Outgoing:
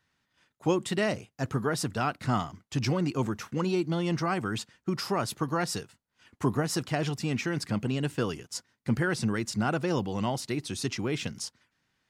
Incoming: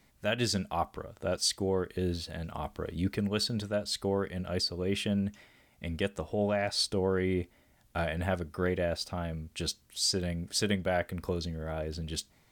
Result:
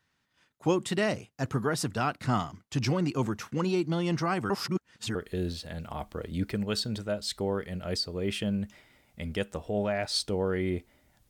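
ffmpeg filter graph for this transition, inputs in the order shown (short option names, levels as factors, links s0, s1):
-filter_complex "[0:a]apad=whole_dur=11.29,atrim=end=11.29,asplit=2[s0][s1];[s0]atrim=end=4.502[s2];[s1]atrim=start=4.498:end=5.152,asetpts=PTS-STARTPTS,areverse[s3];[1:a]atrim=start=1.788:end=7.93[s4];[s2][s3]acrossfade=d=0.004:c1=hsin:c2=hsin[s5];[s5][s4]acrossfade=d=0.004:c1=hsin:c2=hsin"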